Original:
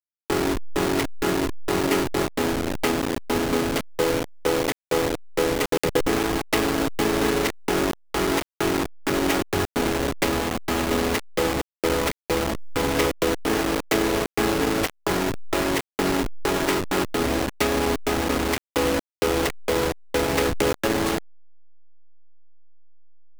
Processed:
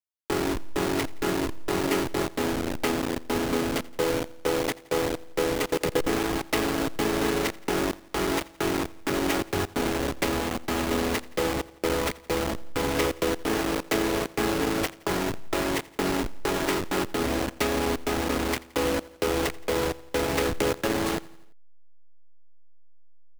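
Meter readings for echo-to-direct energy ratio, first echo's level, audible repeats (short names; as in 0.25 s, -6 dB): -20.0 dB, -21.5 dB, 3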